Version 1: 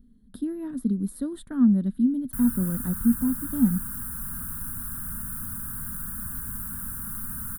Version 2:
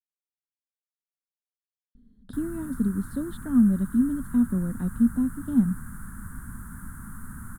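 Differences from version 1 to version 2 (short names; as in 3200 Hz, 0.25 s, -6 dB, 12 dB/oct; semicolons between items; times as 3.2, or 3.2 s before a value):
speech: entry +1.95 s; master: add air absorption 70 m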